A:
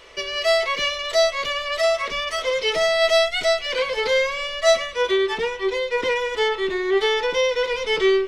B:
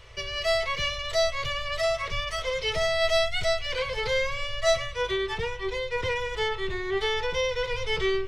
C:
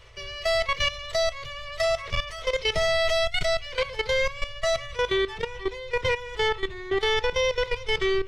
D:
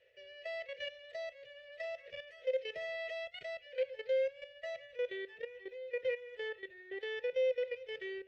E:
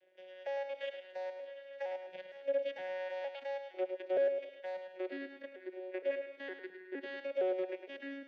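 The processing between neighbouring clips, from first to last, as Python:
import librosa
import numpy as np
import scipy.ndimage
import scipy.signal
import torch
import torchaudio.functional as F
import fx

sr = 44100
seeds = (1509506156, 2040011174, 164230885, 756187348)

y1 = fx.low_shelf_res(x, sr, hz=170.0, db=13.5, q=3.0)
y1 = F.gain(torch.from_numpy(y1), -5.5).numpy()
y2 = fx.level_steps(y1, sr, step_db=14)
y2 = F.gain(torch.from_numpy(y2), 5.5).numpy()
y3 = fx.vowel_filter(y2, sr, vowel='e')
y3 = F.gain(torch.from_numpy(y3), -5.0).numpy()
y4 = fx.vocoder_arp(y3, sr, chord='bare fifth', root=54, every_ms=463)
y4 = fx.echo_feedback(y4, sr, ms=106, feedback_pct=37, wet_db=-8.5)
y4 = 10.0 ** (-25.5 / 20.0) * np.tanh(y4 / 10.0 ** (-25.5 / 20.0))
y4 = F.gain(torch.from_numpy(y4), 1.0).numpy()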